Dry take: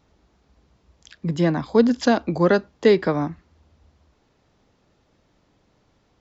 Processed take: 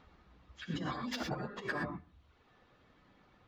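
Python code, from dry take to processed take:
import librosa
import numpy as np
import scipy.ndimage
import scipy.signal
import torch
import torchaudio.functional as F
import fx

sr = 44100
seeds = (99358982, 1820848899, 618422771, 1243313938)

p1 = fx.over_compress(x, sr, threshold_db=-29.0, ratio=-1.0)
p2 = fx.band_shelf(p1, sr, hz=2100.0, db=8.0, octaves=2.3)
p3 = fx.hum_notches(p2, sr, base_hz=50, count=9)
p4 = fx.comb_fb(p3, sr, f0_hz=250.0, decay_s=0.28, harmonics='odd', damping=0.0, mix_pct=70)
p5 = np.clip(10.0 ** (24.0 / 20.0) * p4, -1.0, 1.0) / 10.0 ** (24.0 / 20.0)
p6 = p5 + fx.echo_filtered(p5, sr, ms=216, feedback_pct=17, hz=1100.0, wet_db=-13.0, dry=0)
p7 = fx.dereverb_blind(p6, sr, rt60_s=1.7)
p8 = fx.high_shelf(p7, sr, hz=2800.0, db=-12.0)
p9 = fx.stretch_vocoder_free(p8, sr, factor=0.56)
p10 = fx.rev_gated(p9, sr, seeds[0], gate_ms=140, shape='rising', drr_db=3.0)
y = F.gain(torch.from_numpy(p10), 3.5).numpy()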